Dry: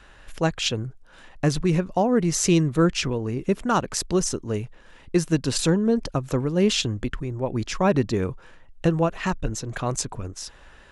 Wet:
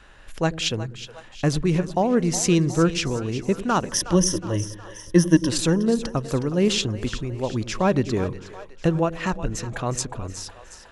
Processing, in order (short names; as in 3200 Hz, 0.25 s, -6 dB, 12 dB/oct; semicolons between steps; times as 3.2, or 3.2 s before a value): 3.87–5.49 ripple EQ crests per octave 1.2, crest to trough 16 dB; split-band echo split 470 Hz, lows 96 ms, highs 0.365 s, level -13 dB